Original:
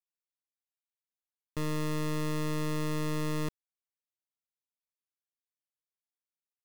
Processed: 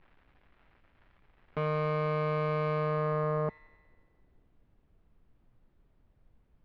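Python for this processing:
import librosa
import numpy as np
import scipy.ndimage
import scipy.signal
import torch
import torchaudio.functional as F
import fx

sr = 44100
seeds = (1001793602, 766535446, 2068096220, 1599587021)

y = scipy.signal.sosfilt(scipy.signal.butter(2, 77.0, 'highpass', fs=sr, output='sos'), x)
y = fx.peak_eq(y, sr, hz=860.0, db=7.5, octaves=0.38)
y = y + 0.97 * np.pad(y, (int(4.6 * sr / 1000.0), 0))[:len(y)]
y = fx.dmg_crackle(y, sr, seeds[0], per_s=370.0, level_db=-48.0)
y = fx.filter_sweep_lowpass(y, sr, from_hz=2100.0, to_hz=110.0, start_s=2.7, end_s=5.39, q=1.1)
y = fx.dmg_noise_colour(y, sr, seeds[1], colour='brown', level_db=-65.0)
y = fx.air_absorb(y, sr, metres=280.0)
y = fx.echo_wet_highpass(y, sr, ms=91, feedback_pct=66, hz=2500.0, wet_db=-4.5)
y = fx.doppler_dist(y, sr, depth_ms=0.4)
y = y * 10.0 ** (1.5 / 20.0)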